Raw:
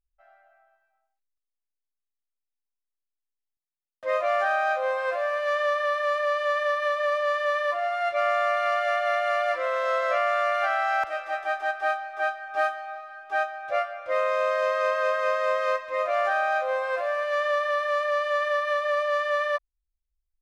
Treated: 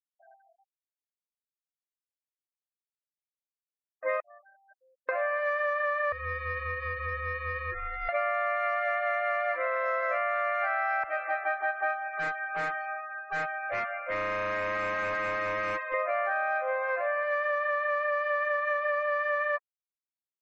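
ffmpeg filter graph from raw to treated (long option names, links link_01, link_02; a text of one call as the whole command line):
ffmpeg -i in.wav -filter_complex "[0:a]asettb=1/sr,asplit=3[link_01][link_02][link_03];[link_01]atrim=end=4.204[link_04];[link_02]atrim=start=4.2:end=5.09,asetpts=PTS-STARTPTS,afade=type=in:duration=0.004:curve=qsin,afade=type=out:start_time=0.886:duration=0.004:curve=qsin,agate=range=-37dB:threshold=-20dB:ratio=16:release=100:detection=peak,highshelf=frequency=2600:gain=4[link_05];[link_03]atrim=start=5.086[link_06];[link_04][link_05]acrossfade=duration=0.004:curve1=hsin:curve2=qsin[link_07];[link_07][link_06]acrossfade=duration=0.004:curve1=qsin:curve2=hsin,asettb=1/sr,asplit=3[link_08][link_09][link_10];[link_08]atrim=end=6.124[link_11];[link_09]atrim=start=6.12:end=8.09,asetpts=PTS-STARTPTS,afade=type=in:duration=0.004:curve=qsin,afade=type=out:start_time=1.966:duration=0.004:curve=qsin,highpass=frequency=1400:poles=1,equalizer=frequency=1900:width_type=o:width=0.83:gain=-10.5,aeval=exprs='val(0)*sin(2*PI*670*n/s)':channel_layout=same[link_12];[link_10]atrim=start=8.086[link_13];[link_11][link_12]acrossfade=duration=0.004:curve1=hsin:curve2=qsin[link_14];[link_14][link_13]acrossfade=duration=0.004:curve1=qsin:curve2=hsin,asettb=1/sr,asplit=3[link_15][link_16][link_17];[link_15]atrim=end=12.084[link_18];[link_16]atrim=start=12.08:end=15.94,asetpts=PTS-STARTPTS,afade=type=in:duration=0.004:curve=qsin,afade=type=out:start_time=3.856:duration=0.004:curve=qsin,highpass=44,tiltshelf=frequency=1300:gain=-4.5,asoftclip=type=hard:threshold=-31dB[link_19];[link_17]atrim=start=15.936[link_20];[link_18][link_19]acrossfade=duration=0.004:curve1=hsin:curve2=qsin[link_21];[link_21][link_20]acrossfade=duration=0.004:curve1=qsin:curve2=hsin,afftfilt=real='re*gte(hypot(re,im),0.00708)':imag='im*gte(hypot(re,im),0.00708)':win_size=1024:overlap=0.75,highshelf=frequency=2700:width_type=q:width=3:gain=-7,acompressor=threshold=-27dB:ratio=6,volume=1dB" out.wav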